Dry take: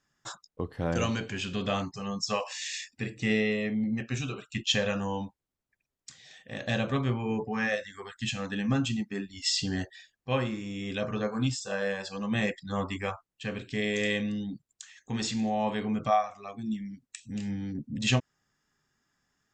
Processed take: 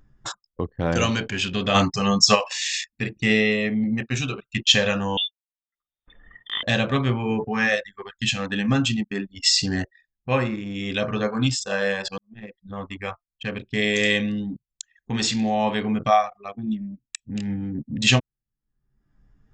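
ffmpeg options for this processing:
-filter_complex "[0:a]asplit=3[s0][s1][s2];[s0]afade=t=out:st=1.74:d=0.02[s3];[s1]acontrast=87,afade=t=in:st=1.74:d=0.02,afade=t=out:st=2.34:d=0.02[s4];[s2]afade=t=in:st=2.34:d=0.02[s5];[s3][s4][s5]amix=inputs=3:normalize=0,asettb=1/sr,asplit=3[s6][s7][s8];[s6]atrim=end=5.174[s9];[s7]atrim=start=5.17:end=6.63,asetpts=PTS-STARTPTS,afade=t=in:d=0.004:c=qsin,afade=t=out:st=1.456:d=0.004:c=qsin,lowpass=f=3100:t=q:w=0.5098,lowpass=f=3100:t=q:w=0.6013,lowpass=f=3100:t=q:w=0.9,lowpass=f=3100:t=q:w=2.563,afreqshift=-3700[s10];[s8]atrim=start=6.626[s11];[s9][s10]acrossfade=d=0.004:c1=hsin:c2=qsin[s12];[s12][s11]acrossfade=d=0.004:c1=qsin:c2=hsin,asettb=1/sr,asplit=3[s13][s14][s15];[s13]atrim=end=9.484[s16];[s14]atrim=start=9.48:end=10.55,asetpts=PTS-STARTPTS,afade=t=in:d=0.004:c=qsin,afade=t=out:st=1.066:d=0.004:c=qsin,equalizer=f=3200:t=o:w=0.21:g=-13.5[s17];[s15]atrim=start=10.546[s18];[s16][s17]acrossfade=d=0.004:c1=hsin:c2=qsin[s19];[s19][s18]acrossfade=d=0.004:c1=qsin:c2=hsin,asplit=2[s20][s21];[s20]atrim=end=12.18,asetpts=PTS-STARTPTS,afade=t=out:st=12.176:d=0.004:c=hsin[s22];[s21]atrim=start=12.18,asetpts=PTS-STARTPTS,afade=t=in:d=1.63[s23];[s22][s23]concat=n=2:v=0:a=1,anlmdn=0.398,equalizer=f=3600:t=o:w=2.5:g=4.5,acompressor=mode=upward:threshold=0.0126:ratio=2.5,volume=2"

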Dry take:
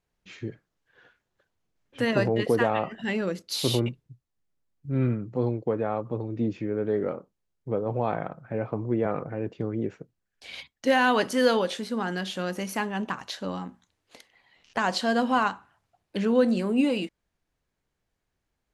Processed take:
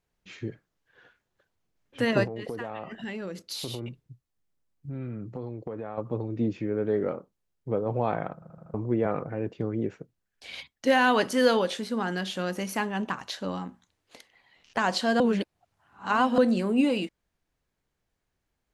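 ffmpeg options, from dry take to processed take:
-filter_complex "[0:a]asettb=1/sr,asplit=3[s0][s1][s2];[s0]atrim=end=2.244[s3];[s1]atrim=start=2.24:end=5.98,asetpts=PTS-STARTPTS,afade=t=in:d=0.004:c=qsin,afade=t=out:st=3.736:d=0.004:c=qsin,acompressor=threshold=0.0251:ratio=5:attack=3.2:release=140:knee=1:detection=peak[s4];[s2]atrim=start=5.976[s5];[s3][s4]acrossfade=d=0.004:c1=hsin:c2=qsin[s6];[s6][s5]acrossfade=d=0.004:c1=qsin:c2=hsin,asplit=8[s7][s8][s9][s10][s11][s12][s13][s14];[s7]atrim=end=8.422[s15];[s8]atrim=start=8.338:end=8.422[s16];[s9]atrim=start=8.338:end=8.422[s17];[s10]atrim=start=8.338:end=8.422[s18];[s11]atrim=start=8.338:end=8.422[s19];[s12]atrim=start=8.738:end=15.202[s20];[s13]atrim=start=15.198:end=16.382,asetpts=PTS-STARTPTS,areverse[s21];[s14]atrim=start=16.378[s22];[s15][s16]acrossfade=d=0.004:c1=hsin:c2=hsin[s23];[s23][s17]acrossfade=d=0.004:c1=hsin:c2=hsin[s24];[s24][s18]acrossfade=d=0.004:c1=hsin:c2=hsin[s25];[s25][s19]acrossfade=d=0.004:c1=hsin:c2=hsin[s26];[s26][s20]acrossfade=d=0.004:c1=hsin:c2=hsin[s27];[s27][s21]acrossfade=d=0.004:c1=hsin:c2=hsin[s28];[s28][s22]acrossfade=d=0.004:c1=hsin:c2=hsin"

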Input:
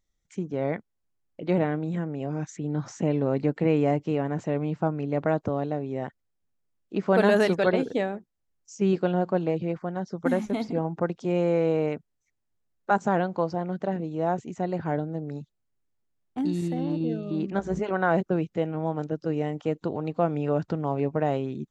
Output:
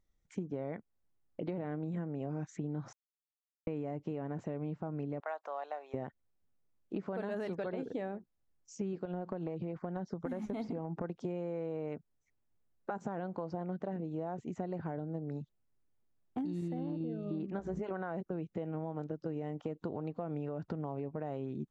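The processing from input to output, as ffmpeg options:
-filter_complex "[0:a]asettb=1/sr,asplit=3[s0][s1][s2];[s0]atrim=end=5.204[s3];[s1]atrim=start=5.2:end=5.94,asetpts=PTS-STARTPTS,afade=t=in:d=0.004:c=qsin,afade=t=out:st=0.736:d=0.004:c=qsin,highpass=f=730:w=0.5412,highpass=f=730:w=1.3066[s4];[s2]atrim=start=5.936[s5];[s3][s4]acrossfade=d=0.004:c1=hsin:c2=qsin[s6];[s6][s5]acrossfade=d=0.004:c1=qsin:c2=hsin,asettb=1/sr,asplit=3[s7][s8][s9];[s7]atrim=end=9.054[s10];[s8]atrim=start=9.05:end=11.04,asetpts=PTS-STARTPTS,afade=t=in:d=0.004:c=qsin,afade=t=out:st=1.986:d=0.004:c=qsin,acompressor=threshold=0.0447:ratio=5:attack=3.2:release=140:knee=1:detection=peak[s11];[s9]atrim=start=11.036[s12];[s10][s11]acrossfade=d=0.004:c1=hsin:c2=qsin[s13];[s13][s12]acrossfade=d=0.004:c1=qsin:c2=hsin,asplit=3[s14][s15][s16];[s14]atrim=end=2.93,asetpts=PTS-STARTPTS,afade=t=out:st=2.926:d=0.004:c=hsin[s17];[s15]atrim=start=2.93:end=3.67,asetpts=PTS-STARTPTS,volume=0[s18];[s16]atrim=start=3.67,asetpts=PTS-STARTPTS,afade=t=in:d=0.004:c=hsin[s19];[s17][s18][s19]concat=n=3:v=0:a=1,highshelf=f=2300:g=-10,alimiter=limit=0.1:level=0:latency=1:release=67,acompressor=threshold=0.0158:ratio=6,volume=1.12"

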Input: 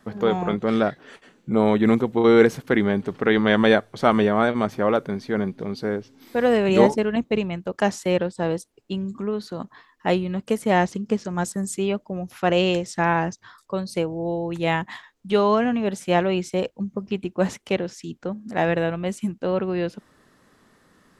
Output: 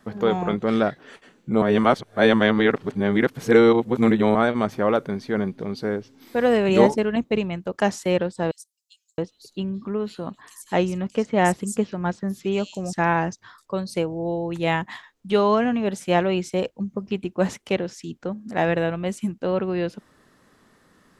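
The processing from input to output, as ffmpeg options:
-filter_complex "[0:a]asettb=1/sr,asplit=3[s0][s1][s2];[s0]atrim=end=8.514[s3];[s1]atrim=start=8.51:end=12.93,asetpts=PTS-STARTPTS,afade=t=in:d=0.004:c=qsin,afade=t=out:st=4.416:d=0.004:c=qsin,acrossover=split=4500[s4][s5];[s4]adelay=670[s6];[s6][s5]amix=inputs=2:normalize=0,atrim=end_sample=194922[s7];[s2]atrim=start=12.926[s8];[s3][s7]acrossfade=d=0.004:c1=hsin:c2=qsin[s9];[s9][s8]acrossfade=d=0.004:c1=qsin:c2=hsin,asplit=3[s10][s11][s12];[s10]atrim=end=1.622[s13];[s11]atrim=start=1.618:end=4.352,asetpts=PTS-STARTPTS,areverse[s14];[s12]atrim=start=4.348[s15];[s13][s14]acrossfade=d=0.004:c1=hsin:c2=hsin[s16];[s16][s15]acrossfade=d=0.004:c1=hsin:c2=hsin"

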